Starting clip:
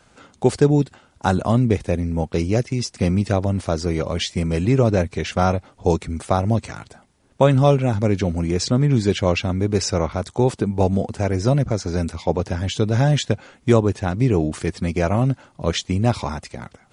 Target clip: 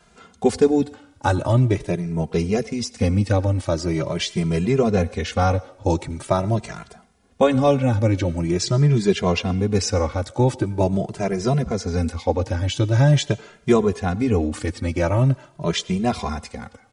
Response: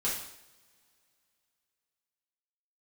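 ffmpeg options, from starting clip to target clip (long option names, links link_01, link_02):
-filter_complex "[0:a]asplit=2[link_01][link_02];[link_02]highpass=340[link_03];[1:a]atrim=start_sample=2205,adelay=84[link_04];[link_03][link_04]afir=irnorm=-1:irlink=0,volume=-25.5dB[link_05];[link_01][link_05]amix=inputs=2:normalize=0,asplit=2[link_06][link_07];[link_07]adelay=2.5,afreqshift=0.44[link_08];[link_06][link_08]amix=inputs=2:normalize=1,volume=2.5dB"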